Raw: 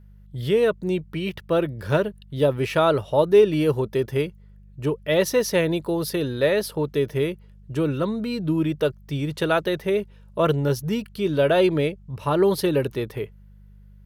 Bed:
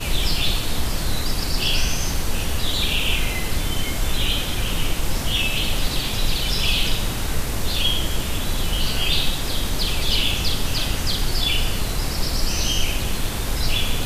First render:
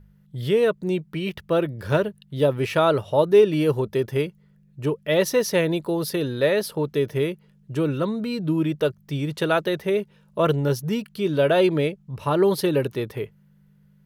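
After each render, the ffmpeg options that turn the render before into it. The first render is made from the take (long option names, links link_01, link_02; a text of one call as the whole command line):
ffmpeg -i in.wav -af "bandreject=frequency=50:width_type=h:width=4,bandreject=frequency=100:width_type=h:width=4" out.wav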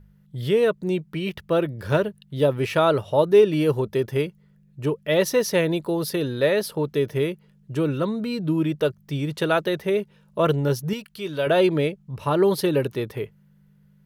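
ffmpeg -i in.wav -filter_complex "[0:a]asettb=1/sr,asplit=3[link_01][link_02][link_03];[link_01]atrim=end=10.934[link_04];[link_02]atrim=start=10.93:end=11.47,asetpts=PTS-STARTPTS,afade=type=in:duration=0.004:curve=qsin,afade=type=out:start_time=0.536:duration=0.004:curve=qsin,equalizer=frequency=220:width_type=o:width=2.9:gain=-9[link_05];[link_03]atrim=start=11.466[link_06];[link_04][link_05]acrossfade=duration=0.004:curve1=hsin:curve2=qsin[link_07];[link_07][link_06]acrossfade=duration=0.004:curve1=qsin:curve2=hsin" out.wav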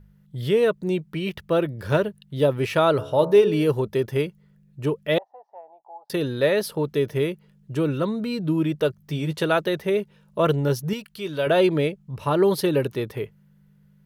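ffmpeg -i in.wav -filter_complex "[0:a]asplit=3[link_01][link_02][link_03];[link_01]afade=type=out:start_time=2.98:duration=0.02[link_04];[link_02]bandreject=frequency=71.15:width_type=h:width=4,bandreject=frequency=142.3:width_type=h:width=4,bandreject=frequency=213.45:width_type=h:width=4,bandreject=frequency=284.6:width_type=h:width=4,bandreject=frequency=355.75:width_type=h:width=4,bandreject=frequency=426.9:width_type=h:width=4,bandreject=frequency=498.05:width_type=h:width=4,bandreject=frequency=569.2:width_type=h:width=4,bandreject=frequency=640.35:width_type=h:width=4,bandreject=frequency=711.5:width_type=h:width=4,bandreject=frequency=782.65:width_type=h:width=4,bandreject=frequency=853.8:width_type=h:width=4,bandreject=frequency=924.95:width_type=h:width=4,bandreject=frequency=996.1:width_type=h:width=4,bandreject=frequency=1067.25:width_type=h:width=4,bandreject=frequency=1138.4:width_type=h:width=4,bandreject=frequency=1209.55:width_type=h:width=4,bandreject=frequency=1280.7:width_type=h:width=4,bandreject=frequency=1351.85:width_type=h:width=4,bandreject=frequency=1423:width_type=h:width=4,bandreject=frequency=1494.15:width_type=h:width=4,bandreject=frequency=1565.3:width_type=h:width=4,bandreject=frequency=1636.45:width_type=h:width=4,bandreject=frequency=1707.6:width_type=h:width=4,afade=type=in:start_time=2.98:duration=0.02,afade=type=out:start_time=3.7:duration=0.02[link_05];[link_03]afade=type=in:start_time=3.7:duration=0.02[link_06];[link_04][link_05][link_06]amix=inputs=3:normalize=0,asettb=1/sr,asplit=3[link_07][link_08][link_09];[link_07]atrim=end=5.184[link_10];[link_08]atrim=start=5.18:end=6.1,asetpts=PTS-STARTPTS,afade=type=in:duration=0.004:curve=qsin,afade=type=out:start_time=0.916:duration=0.004:curve=qsin,asuperpass=centerf=780:order=4:qfactor=5.8[link_11];[link_09]atrim=start=6.096[link_12];[link_10][link_11]acrossfade=duration=0.004:curve1=hsin:curve2=qsin[link_13];[link_13][link_12]acrossfade=duration=0.004:curve1=qsin:curve2=hsin,asettb=1/sr,asplit=3[link_14][link_15][link_16];[link_14]atrim=end=9.004[link_17];[link_15]atrim=start=9:end=9.42,asetpts=PTS-STARTPTS,afade=type=in:duration=0.004:curve=qsin,afade=type=out:start_time=0.416:duration=0.004:curve=qsin,asplit=2[link_18][link_19];[link_19]adelay=12,volume=-6dB[link_20];[link_18][link_20]amix=inputs=2:normalize=0,atrim=end_sample=18522[link_21];[link_16]atrim=start=9.416[link_22];[link_17][link_21]acrossfade=duration=0.004:curve1=hsin:curve2=qsin[link_23];[link_23][link_22]acrossfade=duration=0.004:curve1=qsin:curve2=hsin" out.wav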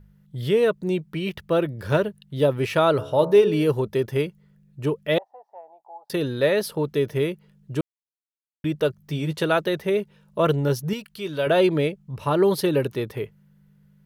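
ffmpeg -i in.wav -filter_complex "[0:a]asplit=3[link_01][link_02][link_03];[link_01]atrim=end=7.81,asetpts=PTS-STARTPTS,afade=type=out:start_time=7.806:duration=0.004:curve=hsin[link_04];[link_02]atrim=start=7.81:end=8.64,asetpts=PTS-STARTPTS,volume=0[link_05];[link_03]atrim=start=8.64,asetpts=PTS-STARTPTS,afade=type=in:duration=0.004:curve=hsin[link_06];[link_04][link_05][link_06]concat=n=3:v=0:a=1" out.wav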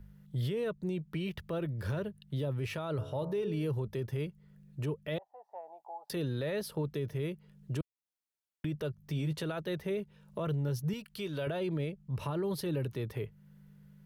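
ffmpeg -i in.wav -filter_complex "[0:a]acrossover=split=140[link_01][link_02];[link_02]acompressor=threshold=-42dB:ratio=2[link_03];[link_01][link_03]amix=inputs=2:normalize=0,alimiter=level_in=2.5dB:limit=-24dB:level=0:latency=1:release=23,volume=-2.5dB" out.wav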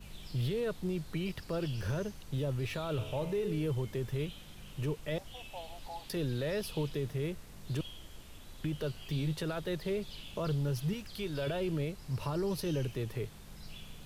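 ffmpeg -i in.wav -i bed.wav -filter_complex "[1:a]volume=-27.5dB[link_01];[0:a][link_01]amix=inputs=2:normalize=0" out.wav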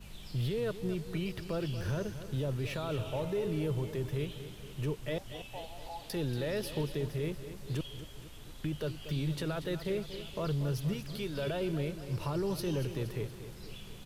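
ffmpeg -i in.wav -af "aecho=1:1:235|470|705|940|1175|1410|1645:0.251|0.148|0.0874|0.0516|0.0304|0.018|0.0106" out.wav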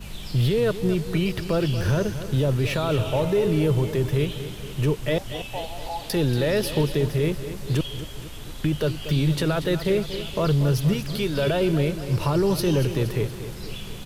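ffmpeg -i in.wav -af "volume=12dB" out.wav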